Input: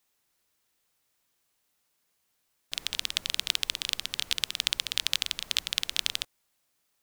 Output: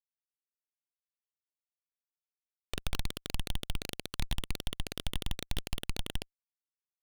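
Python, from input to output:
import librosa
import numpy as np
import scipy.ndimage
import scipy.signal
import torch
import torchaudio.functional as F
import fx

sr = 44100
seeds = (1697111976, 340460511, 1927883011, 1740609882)

y = fx.brickwall_bandstop(x, sr, low_hz=770.0, high_hz=1800.0)
y = fx.env_flanger(y, sr, rest_ms=3.0, full_db=-29.0)
y = fx.schmitt(y, sr, flips_db=-30.0)
y = y * 10.0 ** (10.0 / 20.0)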